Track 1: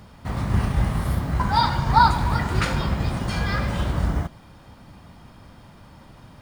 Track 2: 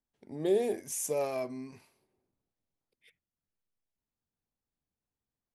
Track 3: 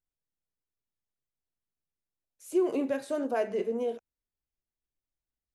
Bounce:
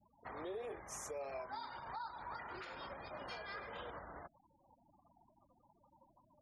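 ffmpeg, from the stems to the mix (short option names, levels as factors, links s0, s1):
-filter_complex "[0:a]volume=0.335[s0];[1:a]bandreject=f=50:t=h:w=6,bandreject=f=100:t=h:w=6,bandreject=f=150:t=h:w=6,bandreject=f=200:t=h:w=6,bandreject=f=250:t=h:w=6,flanger=delay=0.5:depth=8.7:regen=-58:speed=1.3:shape=sinusoidal,volume=1.06[s1];[2:a]volume=0.178[s2];[s0][s2]amix=inputs=2:normalize=0,acompressor=threshold=0.0178:ratio=5,volume=1[s3];[s1][s3]amix=inputs=2:normalize=0,afftfilt=real='re*gte(hypot(re,im),0.00355)':imag='im*gte(hypot(re,im),0.00355)':win_size=1024:overlap=0.75,acrossover=split=400 6800:gain=0.0794 1 0.126[s4][s5][s6];[s4][s5][s6]amix=inputs=3:normalize=0,alimiter=level_in=4.22:limit=0.0631:level=0:latency=1:release=339,volume=0.237"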